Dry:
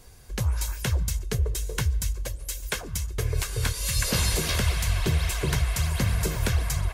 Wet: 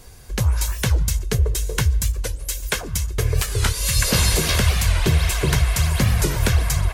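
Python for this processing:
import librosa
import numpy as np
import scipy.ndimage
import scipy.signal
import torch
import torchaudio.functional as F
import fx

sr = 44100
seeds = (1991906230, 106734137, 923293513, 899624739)

y = fx.record_warp(x, sr, rpm=45.0, depth_cents=160.0)
y = F.gain(torch.from_numpy(y), 6.5).numpy()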